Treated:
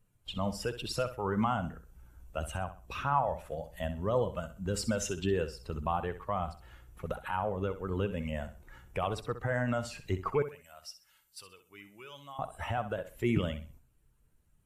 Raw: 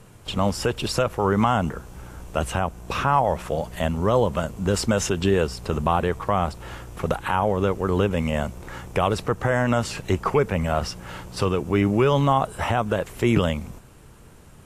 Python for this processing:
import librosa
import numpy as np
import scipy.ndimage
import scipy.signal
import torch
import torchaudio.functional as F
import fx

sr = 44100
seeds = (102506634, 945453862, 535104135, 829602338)

y = fx.bin_expand(x, sr, power=1.5)
y = fx.pre_emphasis(y, sr, coefficient=0.97, at=(10.42, 12.39))
y = fx.echo_feedback(y, sr, ms=64, feedback_pct=30, wet_db=-12.0)
y = y * 10.0 ** (-7.5 / 20.0)